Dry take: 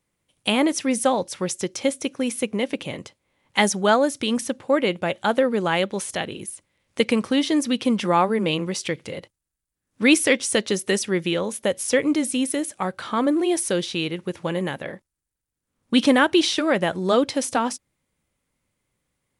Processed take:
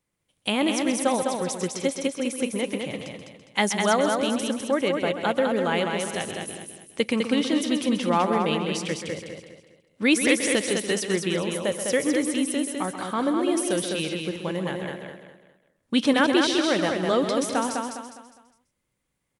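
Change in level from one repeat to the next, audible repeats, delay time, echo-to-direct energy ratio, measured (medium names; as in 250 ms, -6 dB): no regular repeats, 8, 131 ms, -2.5 dB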